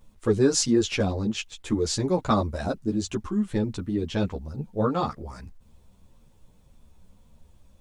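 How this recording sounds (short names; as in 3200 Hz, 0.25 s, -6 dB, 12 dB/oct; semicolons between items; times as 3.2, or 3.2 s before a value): a quantiser's noise floor 12-bit, dither none; a shimmering, thickened sound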